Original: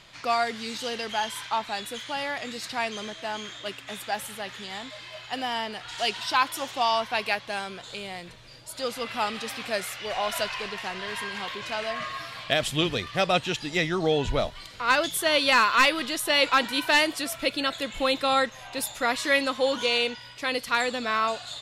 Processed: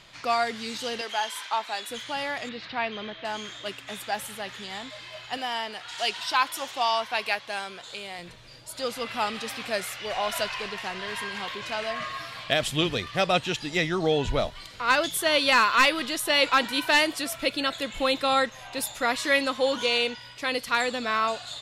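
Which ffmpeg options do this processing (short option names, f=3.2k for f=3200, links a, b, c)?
-filter_complex "[0:a]asettb=1/sr,asplit=3[a][b][c];[a]atrim=end=1.014[d];[b]atrim=start=1.01:end=1.9,asetpts=PTS-STARTPTS,afade=t=in:d=0.004:c=qsin,afade=t=out:st=0.886:d=0.004:c=qsin,highpass=400[e];[c]atrim=start=1.896[f];[d][e]acrossfade=d=0.004:c1=hsin:c2=qsin[g];[g][f]acrossfade=d=0.004:c1=qsin:c2=hsin,asettb=1/sr,asplit=3[h][i][j];[h]atrim=end=2.494[k];[i]atrim=start=2.49:end=3.25,asetpts=PTS-STARTPTS,afade=t=in:d=0.004:c=qsin,afade=t=out:st=0.756:d=0.004:c=qsin,lowpass=f=3.8k:w=0.5412,lowpass=f=3.8k:w=1.3066[l];[j]atrim=start=3.246[m];[k][l]acrossfade=d=0.004:c1=hsin:c2=qsin[n];[n][m]acrossfade=d=0.004:c1=qsin:c2=hsin,asettb=1/sr,asplit=3[o][p][q];[o]atrim=end=5.374[r];[p]atrim=start=5.37:end=8.19,asetpts=PTS-STARTPTS,afade=t=in:d=0.004:c=qsin,afade=t=out:st=2.816:d=0.004:c=qsin,lowshelf=f=260:g=-10.5[s];[q]atrim=start=8.186[t];[r][s]acrossfade=d=0.004:c1=hsin:c2=qsin[u];[u][t]acrossfade=d=0.004:c1=qsin:c2=hsin"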